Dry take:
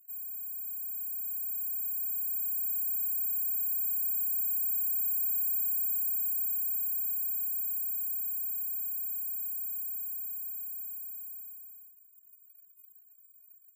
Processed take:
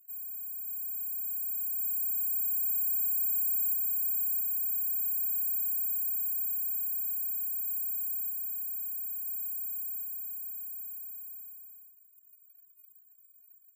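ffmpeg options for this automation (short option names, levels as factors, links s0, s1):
-af "asetnsamples=n=441:p=0,asendcmd='0.68 equalizer g 7.5;1.79 equalizer g 14;3.74 equalizer g 4.5;4.39 equalizer g -6.5;7.67 equalizer g 0;8.3 equalizer g -10.5;9.26 equalizer g -1;10.03 equalizer g -8.5',equalizer=f=11000:t=o:w=0.47:g=-2"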